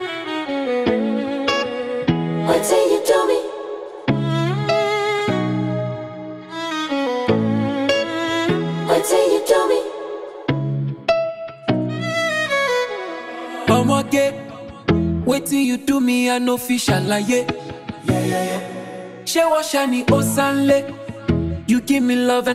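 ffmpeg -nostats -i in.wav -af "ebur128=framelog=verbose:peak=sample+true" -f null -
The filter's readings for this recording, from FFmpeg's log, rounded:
Integrated loudness:
  I:         -19.3 LUFS
  Threshold: -29.6 LUFS
Loudness range:
  LRA:         2.7 LU
  Threshold: -39.6 LUFS
  LRA low:   -21.2 LUFS
  LRA high:  -18.4 LUFS
Sample peak:
  Peak:       -3.1 dBFS
True peak:
  Peak:       -3.1 dBFS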